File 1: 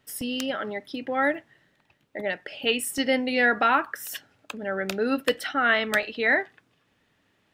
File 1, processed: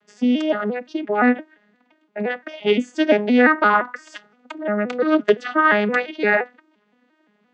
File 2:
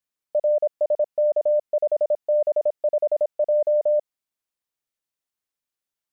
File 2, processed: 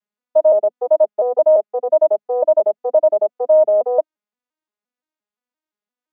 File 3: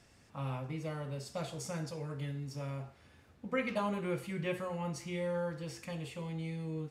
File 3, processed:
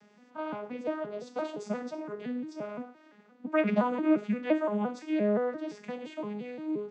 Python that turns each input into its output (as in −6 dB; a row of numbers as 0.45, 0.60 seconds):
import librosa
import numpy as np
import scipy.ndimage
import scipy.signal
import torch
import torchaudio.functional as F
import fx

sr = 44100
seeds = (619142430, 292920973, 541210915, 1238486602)

y = fx.vocoder_arp(x, sr, chord='minor triad', root=56, every_ms=173)
y = fx.peak_eq(y, sr, hz=1200.0, db=5.0, octaves=2.5)
y = y * 10.0 ** (5.5 / 20.0)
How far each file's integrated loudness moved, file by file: +6.0, +6.5, +6.5 LU